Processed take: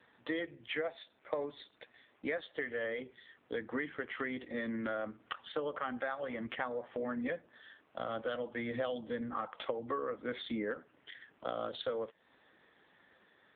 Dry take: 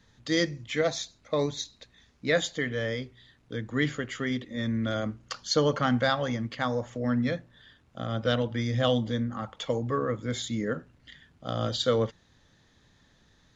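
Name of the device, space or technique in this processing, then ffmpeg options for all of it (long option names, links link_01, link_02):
voicemail: -af "highpass=380,lowpass=2900,acompressor=threshold=-39dB:ratio=10,volume=6.5dB" -ar 8000 -c:a libopencore_amrnb -b:a 5900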